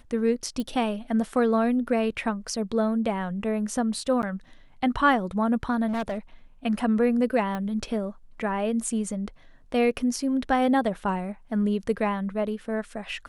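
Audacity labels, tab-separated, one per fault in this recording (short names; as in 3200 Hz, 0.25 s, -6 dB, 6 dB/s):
0.600000	0.600000	pop -20 dBFS
4.220000	4.230000	gap 9.6 ms
5.870000	6.180000	clipped -25 dBFS
7.550000	7.550000	pop -19 dBFS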